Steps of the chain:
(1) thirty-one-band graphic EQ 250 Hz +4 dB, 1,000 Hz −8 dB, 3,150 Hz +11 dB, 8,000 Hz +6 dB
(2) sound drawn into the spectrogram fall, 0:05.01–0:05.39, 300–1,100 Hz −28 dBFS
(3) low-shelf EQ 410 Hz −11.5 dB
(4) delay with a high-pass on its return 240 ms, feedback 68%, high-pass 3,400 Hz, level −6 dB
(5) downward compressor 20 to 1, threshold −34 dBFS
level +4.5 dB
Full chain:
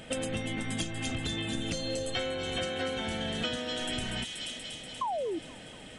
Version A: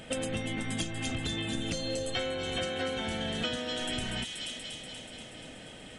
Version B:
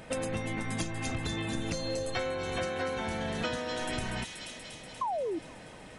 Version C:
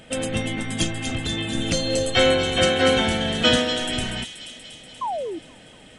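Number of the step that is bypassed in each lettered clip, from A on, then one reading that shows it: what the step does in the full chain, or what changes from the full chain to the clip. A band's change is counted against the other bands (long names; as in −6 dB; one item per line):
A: 2, 1 kHz band −4.0 dB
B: 1, change in momentary loudness spread +3 LU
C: 5, average gain reduction 7.0 dB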